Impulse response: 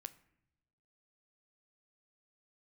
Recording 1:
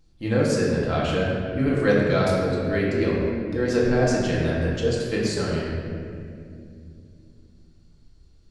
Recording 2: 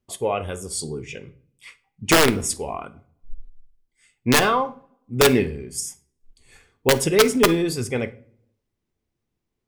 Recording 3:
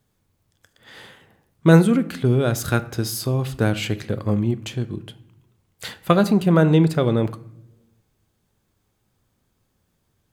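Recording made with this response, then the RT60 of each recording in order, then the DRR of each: 3; 2.5 s, no single decay rate, no single decay rate; -6.0 dB, 11.5 dB, 12.0 dB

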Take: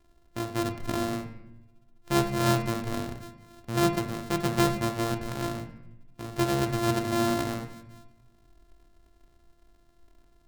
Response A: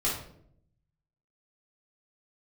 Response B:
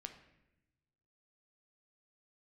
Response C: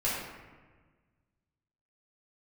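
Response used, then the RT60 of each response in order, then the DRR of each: B; 0.65 s, 0.90 s, 1.4 s; -7.5 dB, 5.5 dB, -9.5 dB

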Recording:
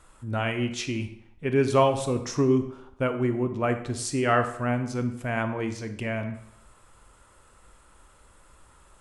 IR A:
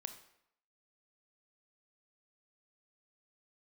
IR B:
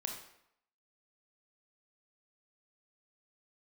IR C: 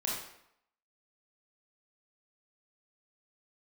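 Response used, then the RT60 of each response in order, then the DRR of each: A; 0.75 s, 0.75 s, 0.75 s; 8.0 dB, 2.0 dB, -4.5 dB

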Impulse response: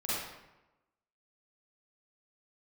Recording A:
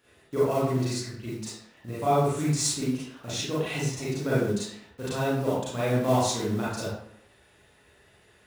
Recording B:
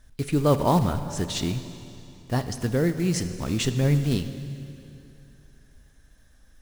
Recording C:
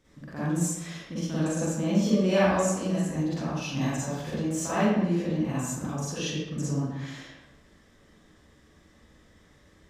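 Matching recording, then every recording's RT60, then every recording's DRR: C; 0.70 s, 2.8 s, 1.0 s; -9.5 dB, 9.5 dB, -10.5 dB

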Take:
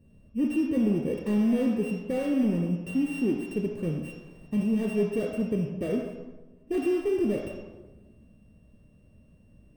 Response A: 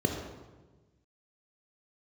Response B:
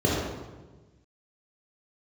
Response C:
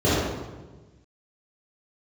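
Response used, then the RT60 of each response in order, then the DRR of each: A; 1.3 s, 1.3 s, 1.3 s; 2.5 dB, -5.5 dB, -12.0 dB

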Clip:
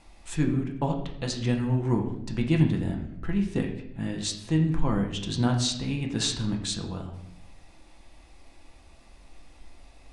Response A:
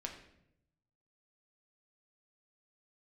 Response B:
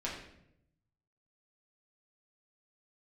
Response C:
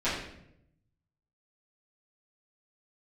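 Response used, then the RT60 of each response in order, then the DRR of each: A; 0.75 s, 0.75 s, 0.75 s; 1.0 dB, -5.5 dB, -13.5 dB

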